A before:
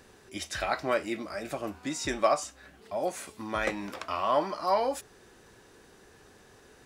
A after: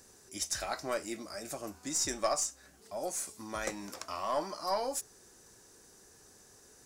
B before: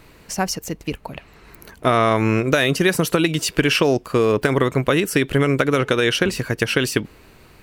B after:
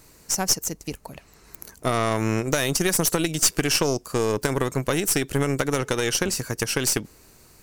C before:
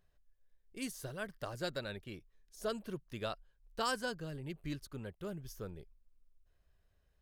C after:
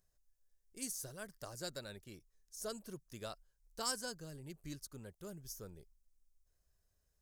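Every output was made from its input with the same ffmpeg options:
ffmpeg -i in.wav -af "highshelf=frequency=4400:width_type=q:width=1.5:gain=11,aeval=exprs='1.19*(cos(1*acos(clip(val(0)/1.19,-1,1)))-cos(1*PI/2))+0.188*(cos(4*acos(clip(val(0)/1.19,-1,1)))-cos(4*PI/2))':channel_layout=same,volume=-6.5dB" out.wav

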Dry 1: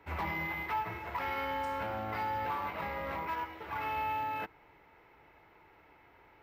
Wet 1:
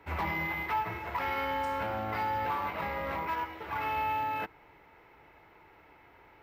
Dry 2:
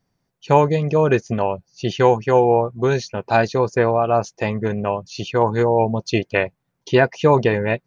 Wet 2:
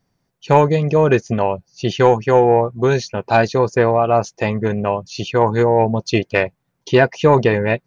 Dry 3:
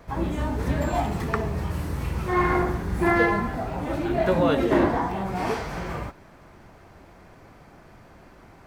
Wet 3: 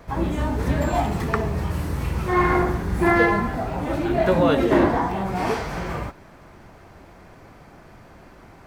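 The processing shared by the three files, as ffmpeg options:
ffmpeg -i in.wav -af "asoftclip=type=tanh:threshold=-3dB,volume=3dB" out.wav

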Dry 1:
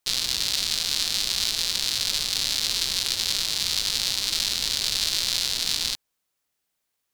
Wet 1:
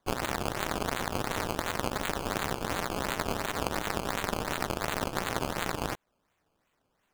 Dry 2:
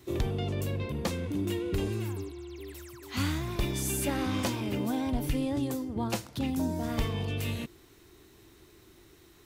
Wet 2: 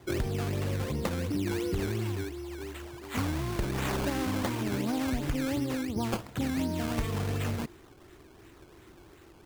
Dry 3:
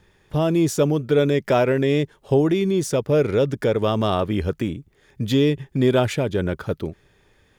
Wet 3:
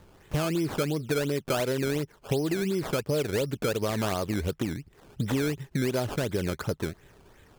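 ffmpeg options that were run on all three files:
ffmpeg -i in.wav -af "acrusher=samples=16:mix=1:aa=0.000001:lfo=1:lforange=16:lforate=2.8,acompressor=threshold=-30dB:ratio=4,volume=3dB" out.wav

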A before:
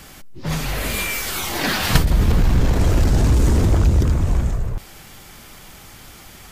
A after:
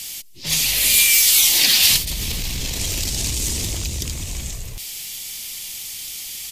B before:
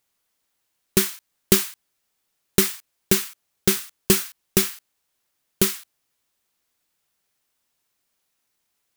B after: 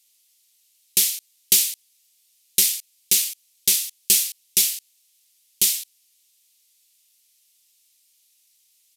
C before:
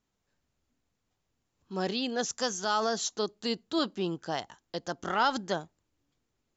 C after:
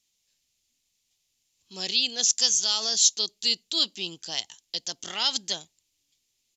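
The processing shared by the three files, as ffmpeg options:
ffmpeg -i in.wav -af "alimiter=limit=-11.5dB:level=0:latency=1:release=261,aexciter=amount=14:drive=2.3:freq=2200,aresample=32000,aresample=44100,volume=-9.5dB" out.wav

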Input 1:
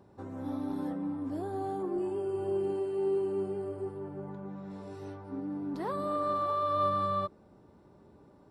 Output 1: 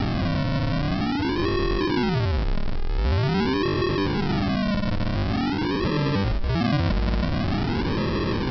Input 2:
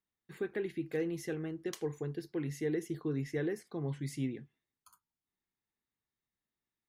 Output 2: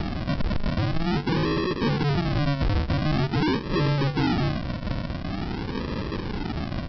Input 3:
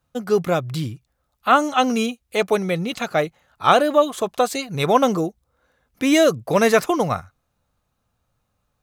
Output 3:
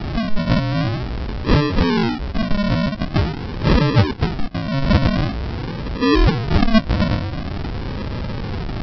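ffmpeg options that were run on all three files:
ffmpeg -i in.wav -af "aeval=exprs='val(0)+0.5*0.141*sgn(val(0))':channel_layout=same,lowpass=frequency=1300:width=0.5412,lowpass=frequency=1300:width=1.3066,adynamicequalizer=threshold=0.0251:dfrequency=300:dqfactor=3.6:tfrequency=300:tqfactor=3.6:attack=5:release=100:ratio=0.375:range=2:mode=cutabove:tftype=bell,acompressor=mode=upward:threshold=-24dB:ratio=2.5,aresample=11025,acrusher=samples=21:mix=1:aa=0.000001:lfo=1:lforange=12.6:lforate=0.46,aresample=44100" out.wav

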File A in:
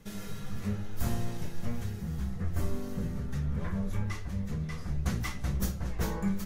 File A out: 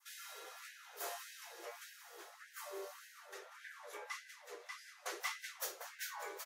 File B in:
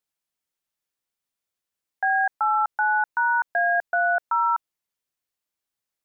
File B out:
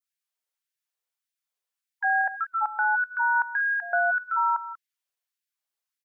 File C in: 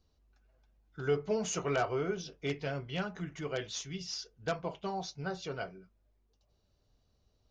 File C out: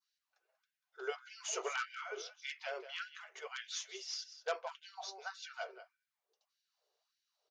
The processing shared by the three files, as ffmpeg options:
ffmpeg -i in.wav -filter_complex "[0:a]asplit=2[link_01][link_02];[link_02]aecho=0:1:189:0.211[link_03];[link_01][link_03]amix=inputs=2:normalize=0,adynamicequalizer=threshold=0.0112:dfrequency=2700:dqfactor=0.78:tfrequency=2700:tqfactor=0.78:attack=5:release=100:ratio=0.375:range=1.5:mode=boostabove:tftype=bell,afftfilt=real='re*gte(b*sr/1024,340*pow(1500/340,0.5+0.5*sin(2*PI*1.7*pts/sr)))':imag='im*gte(b*sr/1024,340*pow(1500/340,0.5+0.5*sin(2*PI*1.7*pts/sr)))':win_size=1024:overlap=0.75,volume=-2.5dB" out.wav

